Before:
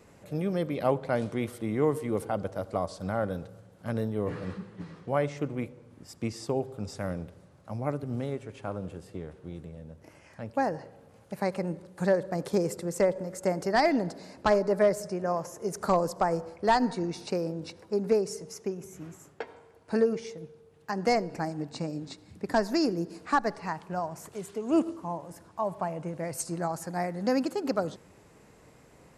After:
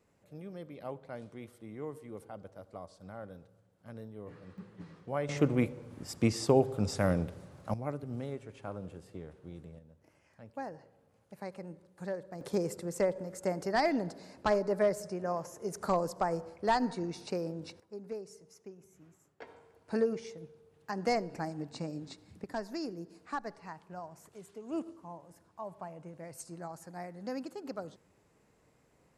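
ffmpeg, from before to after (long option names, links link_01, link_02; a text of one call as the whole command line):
ffmpeg -i in.wav -af "asetnsamples=nb_out_samples=441:pad=0,asendcmd='4.58 volume volume -7dB;5.29 volume volume 5dB;7.74 volume volume -6dB;9.79 volume volume -13dB;12.41 volume volume -5dB;17.8 volume volume -16dB;19.42 volume volume -5dB;22.44 volume volume -12dB',volume=-15.5dB" out.wav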